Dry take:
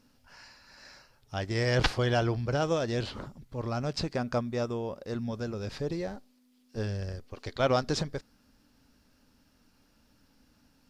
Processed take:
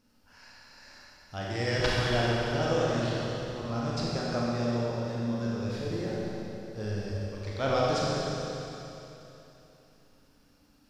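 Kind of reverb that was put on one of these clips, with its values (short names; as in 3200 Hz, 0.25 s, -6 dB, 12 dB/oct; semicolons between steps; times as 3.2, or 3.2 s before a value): Schroeder reverb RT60 3.2 s, combs from 30 ms, DRR -5.5 dB; gain -5 dB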